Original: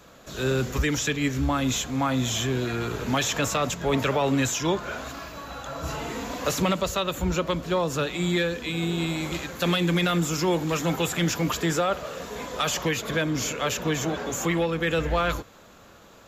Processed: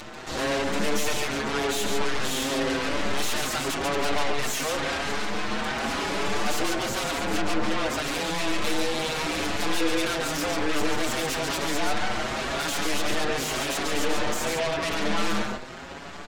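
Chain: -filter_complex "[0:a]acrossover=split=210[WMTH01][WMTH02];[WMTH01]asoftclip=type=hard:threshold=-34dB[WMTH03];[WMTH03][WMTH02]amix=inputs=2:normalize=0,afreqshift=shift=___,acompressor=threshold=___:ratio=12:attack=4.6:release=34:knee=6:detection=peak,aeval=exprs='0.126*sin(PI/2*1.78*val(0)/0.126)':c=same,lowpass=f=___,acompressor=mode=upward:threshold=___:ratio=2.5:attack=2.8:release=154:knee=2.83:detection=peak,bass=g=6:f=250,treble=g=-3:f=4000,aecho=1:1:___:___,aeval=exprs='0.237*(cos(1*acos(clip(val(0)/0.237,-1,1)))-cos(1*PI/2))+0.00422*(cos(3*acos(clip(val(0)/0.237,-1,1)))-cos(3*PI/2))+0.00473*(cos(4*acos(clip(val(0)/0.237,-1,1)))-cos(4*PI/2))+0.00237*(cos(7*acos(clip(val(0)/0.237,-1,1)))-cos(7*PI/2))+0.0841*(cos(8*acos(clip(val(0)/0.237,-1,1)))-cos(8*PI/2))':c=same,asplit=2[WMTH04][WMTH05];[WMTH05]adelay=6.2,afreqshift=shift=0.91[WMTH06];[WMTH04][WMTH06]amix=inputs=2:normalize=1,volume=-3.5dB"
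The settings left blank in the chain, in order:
150, -30dB, 6500, -29dB, 140, 0.596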